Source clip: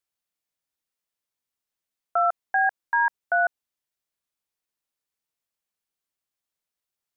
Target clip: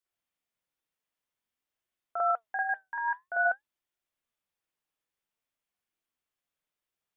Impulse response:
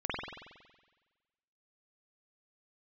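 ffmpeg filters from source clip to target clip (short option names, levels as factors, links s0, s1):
-filter_complex "[0:a]asplit=3[s0][s1][s2];[s0]afade=t=out:st=2.57:d=0.02[s3];[s1]equalizer=f=1000:t=o:w=2.8:g=-9,afade=t=in:st=2.57:d=0.02,afade=t=out:st=3.4:d=0.02[s4];[s2]afade=t=in:st=3.4:d=0.02[s5];[s3][s4][s5]amix=inputs=3:normalize=0,alimiter=limit=0.106:level=0:latency=1,flanger=delay=2.7:depth=3.9:regen=79:speed=0.52:shape=sinusoidal[s6];[1:a]atrim=start_sample=2205,atrim=end_sample=3969[s7];[s6][s7]afir=irnorm=-1:irlink=0,volume=1.19"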